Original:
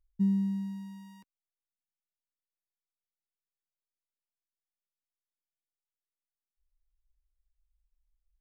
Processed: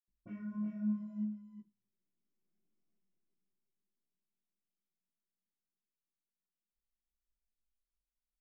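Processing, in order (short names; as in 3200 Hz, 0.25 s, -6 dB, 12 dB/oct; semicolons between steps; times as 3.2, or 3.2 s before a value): Doppler pass-by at 2.56, 23 m/s, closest 8.6 m; low shelf 220 Hz +3 dB; sine folder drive 16 dB, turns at -38 dBFS; chorus 1 Hz, delay 16.5 ms, depth 7.3 ms; echo 0.366 s -6 dB; reverb, pre-delay 76 ms; gain +13 dB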